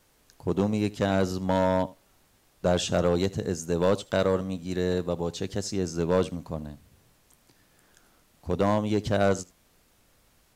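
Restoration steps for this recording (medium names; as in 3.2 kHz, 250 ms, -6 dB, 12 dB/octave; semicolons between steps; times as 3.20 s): clip repair -15 dBFS; expander -56 dBFS, range -21 dB; inverse comb 78 ms -21.5 dB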